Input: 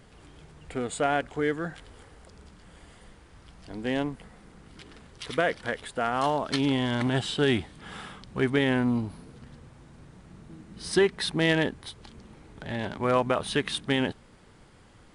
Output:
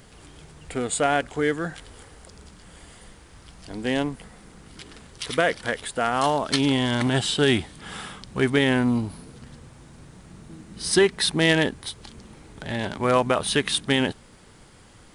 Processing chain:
high-shelf EQ 4,900 Hz +9.5 dB
level +3.5 dB

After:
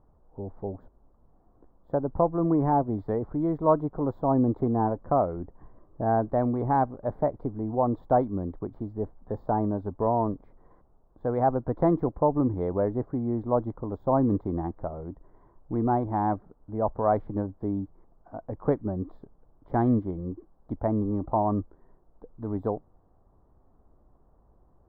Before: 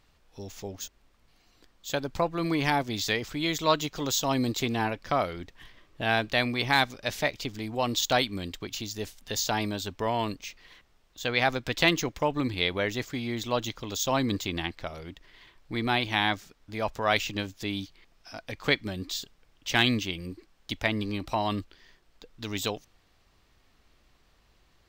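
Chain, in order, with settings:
inverse Chebyshev low-pass filter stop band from 2,500 Hz, stop band 50 dB
level +4.5 dB

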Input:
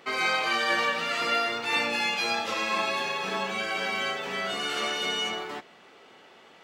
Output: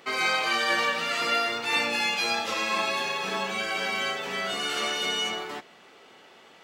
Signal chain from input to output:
high-shelf EQ 4,900 Hz +5 dB

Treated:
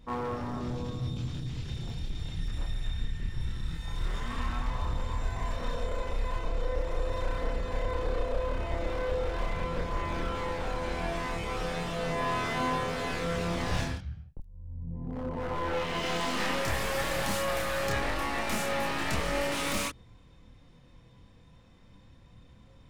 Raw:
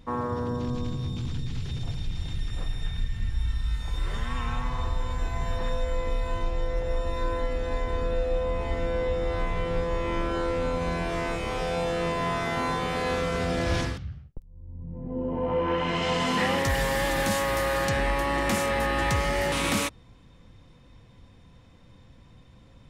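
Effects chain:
wavefolder on the positive side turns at −26 dBFS
multi-voice chorus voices 2, 0.2 Hz, delay 28 ms, depth 3.5 ms

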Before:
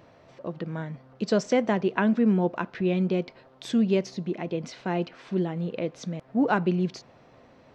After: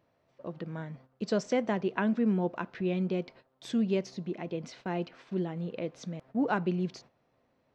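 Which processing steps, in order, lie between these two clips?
noise gate −47 dBFS, range −12 dB
level −5.5 dB

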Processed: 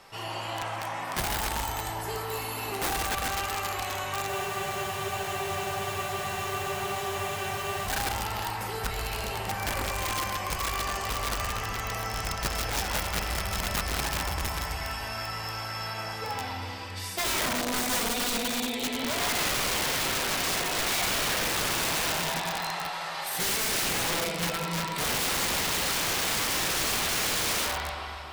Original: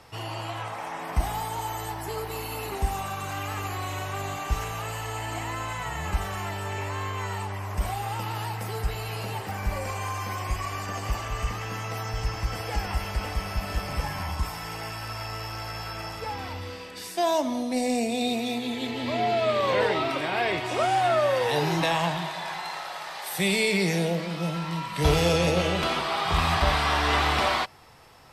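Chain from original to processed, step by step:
low-shelf EQ 420 Hz −7 dB
delay that swaps between a low-pass and a high-pass 137 ms, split 1,700 Hz, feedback 75%, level −10 dB
brickwall limiter −18.5 dBFS, peak gain reduction 8 dB
rectangular room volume 840 cubic metres, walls mixed, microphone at 1.2 metres
wrap-around overflow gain 23 dB
frozen spectrum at 0:04.30, 3.55 s

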